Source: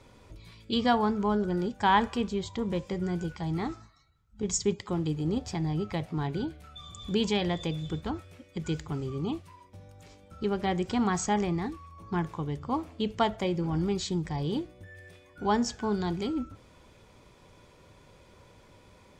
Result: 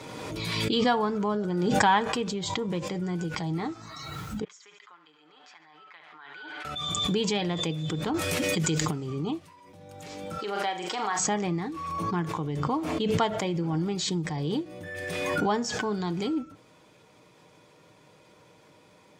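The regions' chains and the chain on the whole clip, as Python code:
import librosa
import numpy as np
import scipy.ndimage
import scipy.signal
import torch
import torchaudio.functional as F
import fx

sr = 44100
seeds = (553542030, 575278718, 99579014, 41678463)

y = fx.chain(x, sr, fx.ladder_bandpass(hz=1700.0, resonance_pct=45),
    fx.comb(ms=6.8, depth=0.36),
    fx.echo_feedback(ms=70, feedback_pct=46, wet_db=-13.0), at=(4.44, 6.65))
y = fx.chain(y, sr, fx.high_shelf(hz=4200.0, db=9.0),
    fx.env_flatten(amount_pct=100), at=(8.14, 8.91))
y = fx.chain(y, sr, fx.highpass(hz=590.0, slope=12),
    fx.room_flutter(wall_m=6.8, rt60_s=0.3), at=(10.38, 11.19))
y = scipy.signal.sosfilt(scipy.signal.butter(2, 150.0, 'highpass', fs=sr, output='sos'), y)
y = y + 0.37 * np.pad(y, (int(6.5 * sr / 1000.0), 0))[:len(y)]
y = fx.pre_swell(y, sr, db_per_s=25.0)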